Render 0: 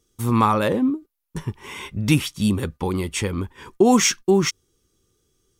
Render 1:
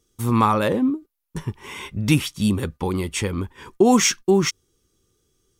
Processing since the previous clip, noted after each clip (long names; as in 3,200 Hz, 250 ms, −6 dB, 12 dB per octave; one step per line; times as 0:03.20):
no processing that can be heard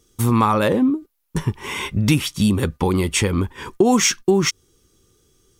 downward compressor 2.5 to 1, threshold −24 dBFS, peak gain reduction 9.5 dB
level +8 dB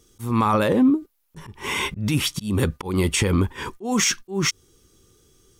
brickwall limiter −12.5 dBFS, peak gain reduction 9 dB
volume swells 208 ms
level +2 dB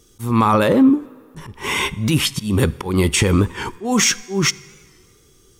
on a send at −19 dB: convolution reverb RT60 1.9 s, pre-delay 3 ms
on the sum: wow of a warped record 45 rpm, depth 100 cents
level +4.5 dB